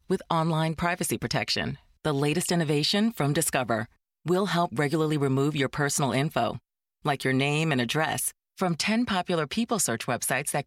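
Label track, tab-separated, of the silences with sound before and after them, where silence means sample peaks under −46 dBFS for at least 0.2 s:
1.760000	2.050000	silence
3.860000	4.250000	silence
6.580000	7.050000	silence
8.310000	8.580000	silence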